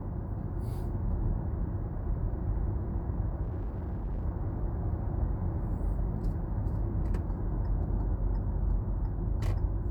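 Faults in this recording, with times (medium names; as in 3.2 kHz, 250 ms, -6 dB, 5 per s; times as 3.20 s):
3.42–4.25 s: clipped -30.5 dBFS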